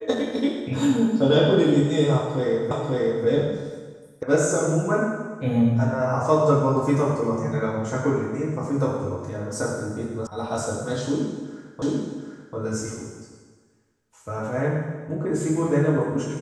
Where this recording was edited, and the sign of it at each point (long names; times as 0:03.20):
0:02.71: the same again, the last 0.54 s
0:04.23: cut off before it has died away
0:10.27: cut off before it has died away
0:11.82: the same again, the last 0.74 s